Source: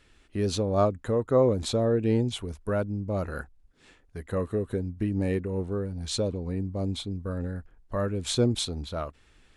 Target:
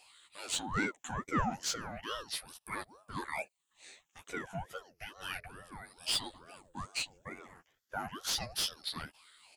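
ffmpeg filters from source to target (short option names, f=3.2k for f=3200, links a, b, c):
-filter_complex "[0:a]afftfilt=real='re*pow(10,18/40*sin(2*PI*(0.81*log(max(b,1)*sr/1024/100)/log(2)-(-0.32)*(pts-256)/sr)))':imag='im*pow(10,18/40*sin(2*PI*(0.81*log(max(b,1)*sr/1024/100)/log(2)-(-0.32)*(pts-256)/sr)))':win_size=1024:overlap=0.75,aderivative,asplit=2[a][b];[b]highpass=f=720:p=1,volume=20dB,asoftclip=type=tanh:threshold=-15.5dB[c];[a][c]amix=inputs=2:normalize=0,lowpass=f=2.9k:p=1,volume=-6dB,asplit=2[d][e];[e]adelay=12,volume=-3.5dB[f];[d][f]amix=inputs=2:normalize=0,aeval=exprs='val(0)*sin(2*PI*600*n/s+600*0.6/2.3*sin(2*PI*2.3*n/s))':c=same,volume=-2dB"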